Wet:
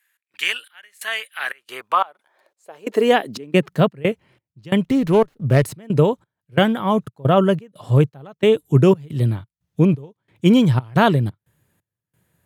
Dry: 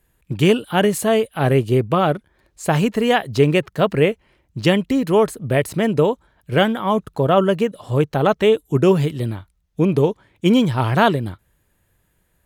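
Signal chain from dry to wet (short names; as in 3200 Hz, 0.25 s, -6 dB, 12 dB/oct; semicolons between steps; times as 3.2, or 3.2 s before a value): step gate "x.xx..xxx.x" 89 bpm -24 dB; high-pass sweep 1800 Hz -> 120 Hz, 1.42–4.04; 4.84–5.64 running maximum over 5 samples; gain -1 dB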